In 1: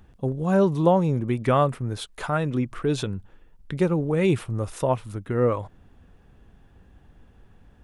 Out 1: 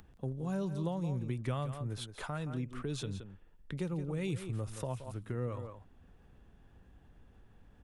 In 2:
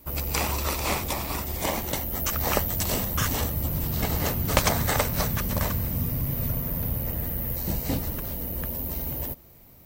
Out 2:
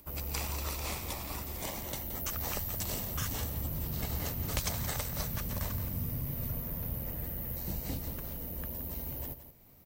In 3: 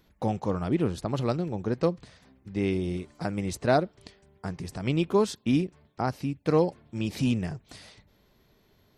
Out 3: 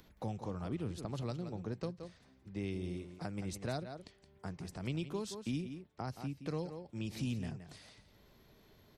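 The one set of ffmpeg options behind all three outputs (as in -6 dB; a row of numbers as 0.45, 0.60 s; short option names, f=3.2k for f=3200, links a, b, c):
-filter_complex "[0:a]acompressor=mode=upward:threshold=-45dB:ratio=2.5,asplit=2[a][b];[b]aecho=0:1:171:0.251[c];[a][c]amix=inputs=2:normalize=0,acrossover=split=160|3000[d][e][f];[e]acompressor=threshold=-32dB:ratio=3[g];[d][g][f]amix=inputs=3:normalize=0,volume=-8.5dB"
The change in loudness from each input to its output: -14.0, -9.0, -13.0 LU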